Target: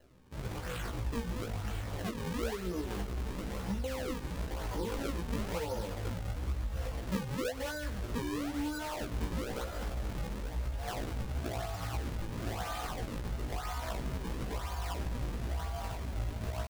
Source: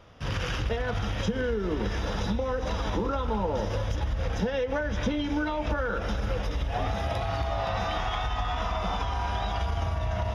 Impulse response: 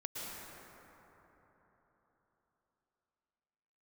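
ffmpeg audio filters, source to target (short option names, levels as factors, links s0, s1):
-af "atempo=0.62,acrusher=samples=37:mix=1:aa=0.000001:lfo=1:lforange=59.2:lforate=1,flanger=delay=15.5:depth=2.2:speed=0.28,volume=0.562"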